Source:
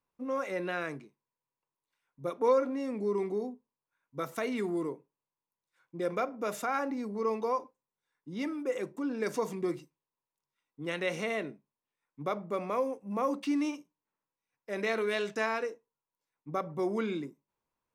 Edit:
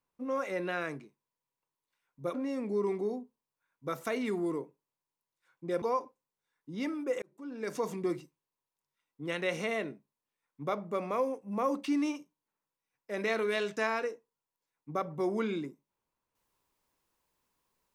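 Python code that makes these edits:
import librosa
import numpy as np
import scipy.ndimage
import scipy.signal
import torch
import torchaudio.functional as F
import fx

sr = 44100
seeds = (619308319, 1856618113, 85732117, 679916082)

y = fx.edit(x, sr, fx.cut(start_s=2.34, length_s=0.31),
    fx.cut(start_s=6.13, length_s=1.28),
    fx.fade_in_span(start_s=8.81, length_s=0.7), tone=tone)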